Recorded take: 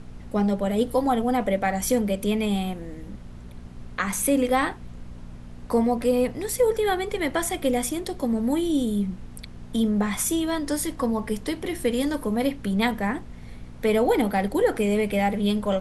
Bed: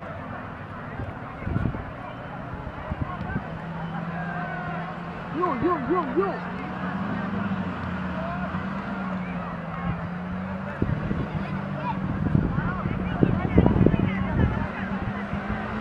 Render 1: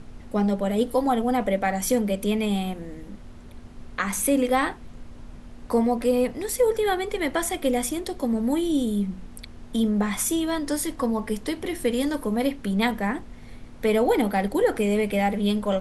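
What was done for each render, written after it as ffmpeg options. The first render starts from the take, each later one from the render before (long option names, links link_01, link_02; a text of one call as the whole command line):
ffmpeg -i in.wav -af "bandreject=frequency=60:width_type=h:width=4,bandreject=frequency=120:width_type=h:width=4,bandreject=frequency=180:width_type=h:width=4" out.wav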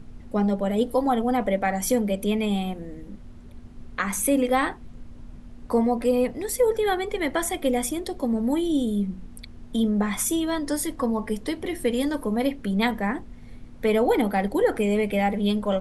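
ffmpeg -i in.wav -af "afftdn=noise_reduction=6:noise_floor=-43" out.wav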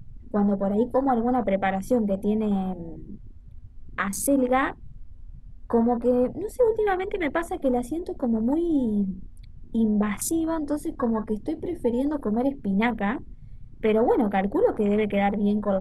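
ffmpeg -i in.wav -af "afwtdn=0.0282,equalizer=frequency=120:width=3.1:gain=6.5" out.wav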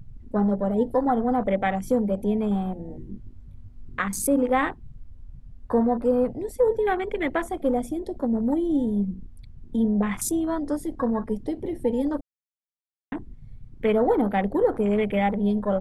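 ffmpeg -i in.wav -filter_complex "[0:a]asettb=1/sr,asplit=3[link_01][link_02][link_03];[link_01]atrim=end=2.884[link_04];[link_02]atrim=start=2.88:end=4,asetpts=PTS-STARTPTS,afade=type=in:duration=0.004:curve=qsin,afade=type=out:start_time=1.116:duration=0.004:curve=qsin,asplit=2[link_05][link_06];[link_06]adelay=21,volume=-3dB[link_07];[link_05][link_07]amix=inputs=2:normalize=0,atrim=end_sample=49392[link_08];[link_03]atrim=start=3.996[link_09];[link_04][link_08]acrossfade=duration=0.004:curve1=hsin:curve2=qsin[link_10];[link_10][link_09]acrossfade=duration=0.004:curve1=qsin:curve2=hsin,asplit=3[link_11][link_12][link_13];[link_11]atrim=end=12.21,asetpts=PTS-STARTPTS,afade=type=out:start_time=12.206:duration=0.004:curve=hsin[link_14];[link_12]atrim=start=12.21:end=13.12,asetpts=PTS-STARTPTS,volume=0[link_15];[link_13]atrim=start=13.12,asetpts=PTS-STARTPTS,afade=type=in:duration=0.004:curve=hsin[link_16];[link_14][link_15][link_16]concat=n=3:v=0:a=1" out.wav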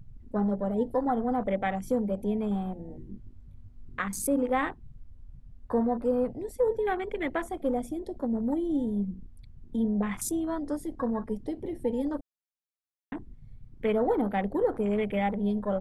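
ffmpeg -i in.wav -af "volume=-5dB" out.wav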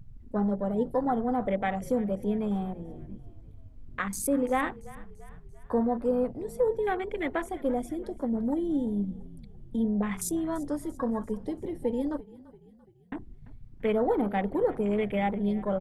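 ffmpeg -i in.wav -filter_complex "[0:a]asplit=5[link_01][link_02][link_03][link_04][link_05];[link_02]adelay=340,afreqshift=-35,volume=-20dB[link_06];[link_03]adelay=680,afreqshift=-70,volume=-25.8dB[link_07];[link_04]adelay=1020,afreqshift=-105,volume=-31.7dB[link_08];[link_05]adelay=1360,afreqshift=-140,volume=-37.5dB[link_09];[link_01][link_06][link_07][link_08][link_09]amix=inputs=5:normalize=0" out.wav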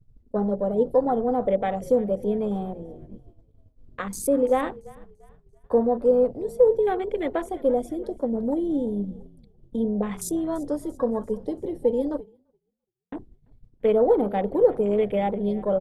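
ffmpeg -i in.wav -af "agate=range=-33dB:threshold=-37dB:ratio=3:detection=peak,equalizer=frequency=500:width_type=o:width=1:gain=9,equalizer=frequency=2000:width_type=o:width=1:gain=-5,equalizer=frequency=4000:width_type=o:width=1:gain=3" out.wav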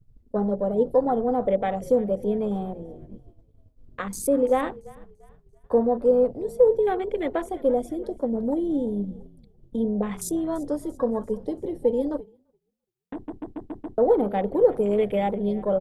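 ffmpeg -i in.wav -filter_complex "[0:a]asettb=1/sr,asplit=3[link_01][link_02][link_03];[link_01]atrim=end=14.724[link_04];[link_02]atrim=start=14.72:end=15.36,asetpts=PTS-STARTPTS,afade=type=in:duration=0.004:curve=qsin,afade=type=out:start_time=0.636:duration=0.004:curve=qsin,highshelf=frequency=5700:gain=7.5[link_05];[link_03]atrim=start=15.356[link_06];[link_04][link_05]acrossfade=duration=0.004:curve1=hsin:curve2=qsin[link_07];[link_07][link_06]acrossfade=duration=0.004:curve1=qsin:curve2=hsin,asplit=7[link_08][link_09][link_10][link_11][link_12][link_13][link_14];[link_08]atrim=end=13.282[link_15];[link_09]atrim=start=13.138:end=13.282[link_16];[link_10]atrim=start=13.138:end=13.282[link_17];[link_11]atrim=start=13.138:end=13.282[link_18];[link_12]atrim=start=13.138:end=13.282[link_19];[link_13]atrim=start=13.138:end=13.282[link_20];[link_14]atrim=start=13.978[link_21];[link_15][link_16]acrossfade=duration=0.004:curve1=hsin:curve2=hsin[link_22];[link_22][link_17]acrossfade=duration=0.004:curve1=hsin:curve2=hsin[link_23];[link_23][link_18]acrossfade=duration=0.004:curve1=hsin:curve2=hsin[link_24];[link_24][link_19]acrossfade=duration=0.004:curve1=hsin:curve2=hsin[link_25];[link_25][link_20]acrossfade=duration=0.004:curve1=hsin:curve2=hsin[link_26];[link_26][link_21]acrossfade=duration=0.004:curve1=hsin:curve2=hsin" out.wav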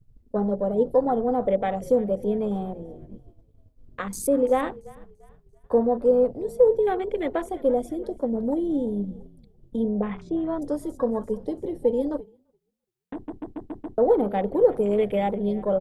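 ffmpeg -i in.wav -filter_complex "[0:a]asettb=1/sr,asplit=3[link_01][link_02][link_03];[link_01]atrim=end=9.884[link_04];[link_02]atrim=start=9.88:end=10.62,asetpts=PTS-STARTPTS,afade=type=in:duration=0.004:curve=qsin,afade=type=out:start_time=0.736:duration=0.004:curve=qsin,lowpass=frequency=3100:width=0.5412,lowpass=frequency=3100:width=1.3066[link_05];[link_03]atrim=start=10.616[link_06];[link_04][link_05]acrossfade=duration=0.004:curve1=hsin:curve2=qsin[link_07];[link_07][link_06]acrossfade=duration=0.004:curve1=qsin:curve2=hsin" out.wav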